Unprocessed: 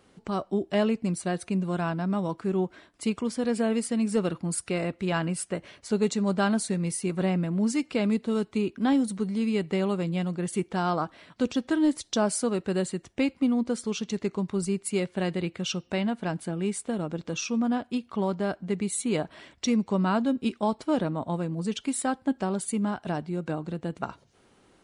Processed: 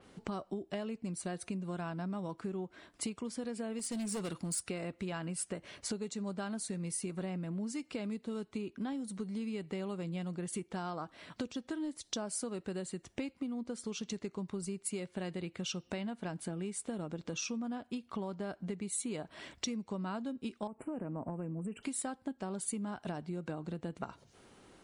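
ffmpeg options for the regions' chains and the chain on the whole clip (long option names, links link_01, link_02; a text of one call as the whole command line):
ffmpeg -i in.wav -filter_complex "[0:a]asettb=1/sr,asplit=3[link_01][link_02][link_03];[link_01]atrim=end=3.794[link_04];[link_02]atrim=start=3.79:end=4.63,asetpts=PTS-STARTPTS,afade=type=in:duration=0.004:curve=qsin,afade=type=out:start_time=0.836:duration=0.004:curve=qsin,acrossover=split=6200[link_05][link_06];[link_06]acompressor=threshold=-43dB:ratio=4:attack=1:release=60[link_07];[link_05][link_07]amix=inputs=2:normalize=0,equalizer=frequency=9300:width=0.37:gain=11,volume=25dB,asoftclip=hard,volume=-25dB[link_08];[link_03]atrim=start=4.626[link_09];[link_04][link_08]acrossfade=duration=0.004:curve1=hsin:curve2=qsin[link_10];[link_10][link_09]acrossfade=duration=0.004:curve1=qsin:curve2=hsin,asettb=1/sr,asplit=3[link_11][link_12][link_13];[link_11]atrim=end=20.674[link_14];[link_12]atrim=start=20.67:end=21.83,asetpts=PTS-STARTPTS,afade=type=in:duration=0.004:curve=qsin,afade=type=out:start_time=1.156:duration=0.004:curve=qsin,equalizer=frequency=260:width=0.37:gain=7,acompressor=threshold=-34dB:ratio=3:attack=3.2:release=140:knee=1:detection=peak,asuperstop=centerf=4700:order=20:qfactor=1[link_15];[link_13]atrim=start=21.826[link_16];[link_14][link_15]acrossfade=duration=0.004:curve1=hsin:curve2=qsin[link_17];[link_17][link_16]acrossfade=duration=0.004:curve1=qsin:curve2=hsin,acompressor=threshold=-37dB:ratio=10,adynamicequalizer=threshold=0.002:dfrequency=4800:dqfactor=0.7:tfrequency=4800:tqfactor=0.7:attack=5:release=100:ratio=0.375:range=2:mode=boostabove:tftype=highshelf,volume=1dB" out.wav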